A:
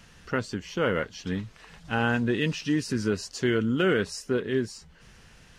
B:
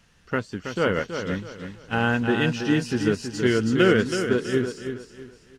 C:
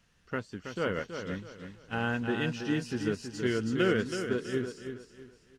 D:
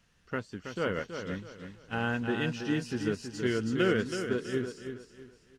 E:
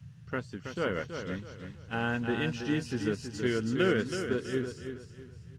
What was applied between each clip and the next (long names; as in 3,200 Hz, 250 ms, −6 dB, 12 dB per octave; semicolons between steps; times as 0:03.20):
on a send: repeating echo 325 ms, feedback 45%, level −5.5 dB; on the sum: expander for the loud parts 1.5 to 1, over −43 dBFS; level +5 dB
notch filter 860 Hz, Q 27; level −8.5 dB
no processing that can be heard
noise in a band 76–160 Hz −49 dBFS